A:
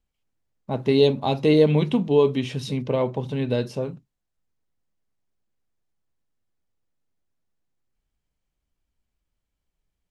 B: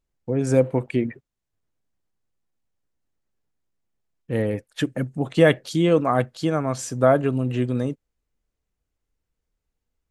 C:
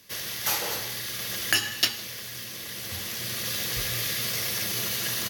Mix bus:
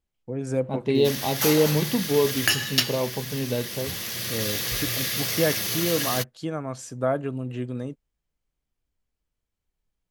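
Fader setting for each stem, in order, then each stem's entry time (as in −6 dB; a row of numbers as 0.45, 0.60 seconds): −3.5, −7.5, +1.5 decibels; 0.00, 0.00, 0.95 seconds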